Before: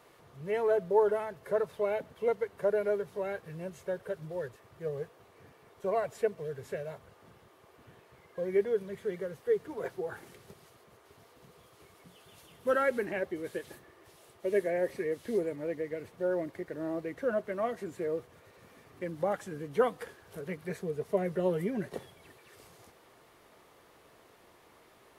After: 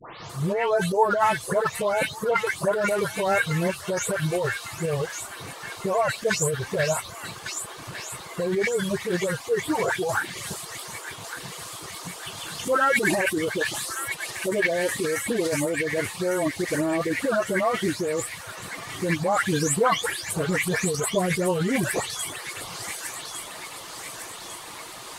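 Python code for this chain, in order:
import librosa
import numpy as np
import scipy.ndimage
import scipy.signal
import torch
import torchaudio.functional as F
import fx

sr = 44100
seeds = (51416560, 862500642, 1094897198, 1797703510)

p1 = fx.spec_delay(x, sr, highs='late', ms=295)
p2 = fx.dereverb_blind(p1, sr, rt60_s=0.58)
p3 = fx.over_compress(p2, sr, threshold_db=-39.0, ratio=-0.5)
p4 = p2 + (p3 * 10.0 ** (3.0 / 20.0))
p5 = fx.graphic_eq_10(p4, sr, hz=(500, 1000, 4000, 8000), db=(-4, 5, 6, 11))
p6 = fx.echo_wet_highpass(p5, sr, ms=1154, feedback_pct=53, hz=2100.0, wet_db=-5)
y = p6 * 10.0 ** (7.0 / 20.0)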